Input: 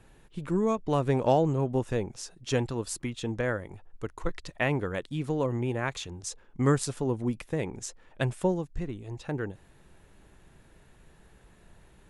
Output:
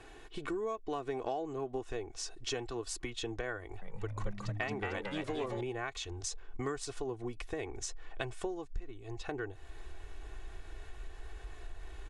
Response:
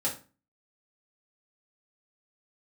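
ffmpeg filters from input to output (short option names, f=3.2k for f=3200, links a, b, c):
-filter_complex "[0:a]lowpass=6.8k,bass=f=250:g=-10,treble=f=4k:g=1,aecho=1:1:2.7:0.67,asubboost=boost=7:cutoff=71,acompressor=threshold=-44dB:ratio=4,asettb=1/sr,asplit=3[a][b][c];[a]atrim=end=3.594[d];[b]atrim=start=3.59:end=5.61,asetpts=PTS-STARTPTS,afade=t=in:d=0.004:c=qsin,afade=t=out:st=2.016:d=0.004:c=qsin,asplit=7[e][f][g][h][i][j][k];[f]adelay=225,afreqshift=97,volume=-4dB[l];[g]adelay=450,afreqshift=194,volume=-10.6dB[m];[h]adelay=675,afreqshift=291,volume=-17.1dB[n];[i]adelay=900,afreqshift=388,volume=-23.7dB[o];[j]adelay=1125,afreqshift=485,volume=-30.2dB[p];[k]adelay=1350,afreqshift=582,volume=-36.8dB[q];[e][l][m][n][o][p][q]amix=inputs=7:normalize=0,atrim=end_sample=89082[r];[c]atrim=start=5.606[s];[d][r]acrossfade=d=0.004:c1=hsin:c2=qsin[t];[t][s]acrossfade=d=0.004:c1=qsin:c2=hsin,volume=6.5dB"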